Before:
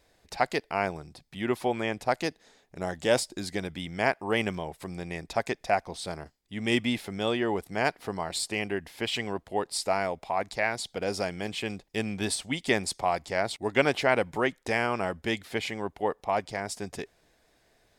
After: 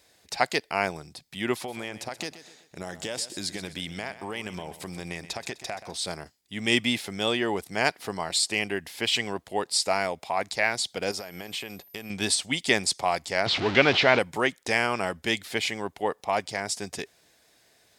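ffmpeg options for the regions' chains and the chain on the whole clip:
ffmpeg -i in.wav -filter_complex "[0:a]asettb=1/sr,asplit=3[link_01][link_02][link_03];[link_01]atrim=end=1.554[link_04];[link_02]atrim=start=1.55:end=5.95,asetpts=PTS-STARTPTS,afade=type=in:duration=0.004:curve=qsin,afade=type=out:start_time=4.396:duration=0.004:curve=qsin,acompressor=threshold=-31dB:ratio=12:attack=3.2:release=140:knee=1:detection=peak,aecho=1:1:127|254|381|508:0.2|0.0818|0.0335|0.0138,atrim=end_sample=194040[link_05];[link_03]atrim=start=5.946[link_06];[link_04][link_05]acrossfade=duration=0.004:curve1=hsin:curve2=qsin[link_07];[link_07][link_06]acrossfade=duration=0.004:curve1=qsin:curve2=hsin,asettb=1/sr,asplit=3[link_08][link_09][link_10];[link_08]atrim=end=11.114[link_11];[link_09]atrim=start=11.11:end=12.1,asetpts=PTS-STARTPTS,afade=type=in:duration=0.004:curve=qsin,afade=type=out:start_time=0.986:duration=0.004:curve=qsin,equalizer=frequency=830:width=0.4:gain=5.5,acompressor=threshold=-35dB:ratio=16:attack=3.2:release=140:knee=1:detection=peak,aeval=exprs='val(0)+0.000794*sin(2*PI*13000*n/s)':channel_layout=same[link_12];[link_10]atrim=start=12.096[link_13];[link_11][link_12]acrossfade=duration=0.004:curve1=hsin:curve2=qsin[link_14];[link_14][link_13]acrossfade=duration=0.004:curve1=qsin:curve2=hsin,asettb=1/sr,asplit=3[link_15][link_16][link_17];[link_15]atrim=end=13.464[link_18];[link_16]atrim=start=13.46:end=14.19,asetpts=PTS-STARTPTS,afade=type=in:duration=0.004:curve=qsin,afade=type=out:start_time=0.726:duration=0.004:curve=qsin,aeval=exprs='val(0)+0.5*0.0531*sgn(val(0))':channel_layout=same,lowpass=frequency=4300:width=0.5412,lowpass=frequency=4300:width=1.3066[link_19];[link_17]atrim=start=14.186[link_20];[link_18][link_19]acrossfade=duration=0.004:curve1=hsin:curve2=qsin[link_21];[link_21][link_20]acrossfade=duration=0.004:curve1=qsin:curve2=hsin,highpass=81,acrossover=split=9100[link_22][link_23];[link_23]acompressor=threshold=-55dB:ratio=4:attack=1:release=60[link_24];[link_22][link_24]amix=inputs=2:normalize=0,highshelf=frequency=2300:gain=10" out.wav

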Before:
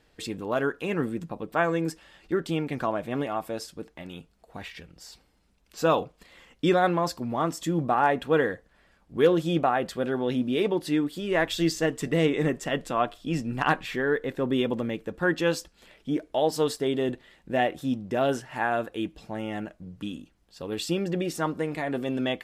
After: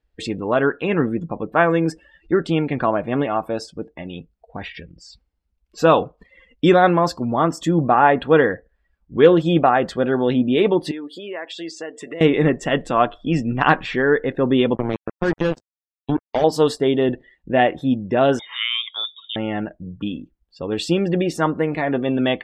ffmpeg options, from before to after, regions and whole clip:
ffmpeg -i in.wav -filter_complex "[0:a]asettb=1/sr,asplit=3[link_01][link_02][link_03];[link_01]atrim=end=10.914[link_04];[link_02]atrim=start=10.91:end=12.21,asetpts=PTS-STARTPTS,afade=type=in:duration=0.004:curve=qsin,afade=type=out:start_time=1.296:duration=0.004:curve=qsin,highpass=390,acompressor=threshold=-39dB:ratio=3:attack=3.2:release=140:knee=1:detection=peak[link_05];[link_03]atrim=start=12.206[link_06];[link_04][link_05]acrossfade=duration=0.004:curve1=hsin:curve2=qsin[link_07];[link_07][link_06]acrossfade=duration=0.004:curve1=qsin:curve2=hsin,asettb=1/sr,asplit=3[link_08][link_09][link_10];[link_08]atrim=end=14.754[link_11];[link_09]atrim=start=14.75:end=16.44,asetpts=PTS-STARTPTS,afade=type=in:duration=0.004:curve=qsin,afade=type=out:start_time=1.686:duration=0.004:curve=qsin,acrusher=bits=3:mix=0:aa=0.5,tiltshelf=frequency=730:gain=5,acompressor=threshold=-23dB:ratio=5:attack=3.2:release=140:knee=1:detection=peak[link_12];[link_10]atrim=start=16.436[link_13];[link_11][link_12]acrossfade=duration=0.004:curve1=hsin:curve2=qsin[link_14];[link_14][link_13]acrossfade=duration=0.004:curve1=qsin:curve2=hsin,asettb=1/sr,asplit=3[link_15][link_16][link_17];[link_15]atrim=end=18.394[link_18];[link_16]atrim=start=18.39:end=19.36,asetpts=PTS-STARTPTS,afade=type=in:duration=0.004:curve=qsin,afade=type=out:start_time=0.966:duration=0.004:curve=qsin,acompressor=threshold=-34dB:ratio=1.5:attack=3.2:release=140:knee=1:detection=peak,lowpass=frequency=3200:width_type=q:width=0.5098,lowpass=frequency=3200:width_type=q:width=0.6013,lowpass=frequency=3200:width_type=q:width=0.9,lowpass=frequency=3200:width_type=q:width=2.563,afreqshift=-3800[link_19];[link_17]atrim=start=19.356[link_20];[link_18][link_19]acrossfade=duration=0.004:curve1=hsin:curve2=qsin[link_21];[link_21][link_20]acrossfade=duration=0.004:curve1=qsin:curve2=hsin,afftdn=noise_reduction=25:noise_floor=-48,highshelf=frequency=7300:gain=-11,volume=8.5dB" out.wav

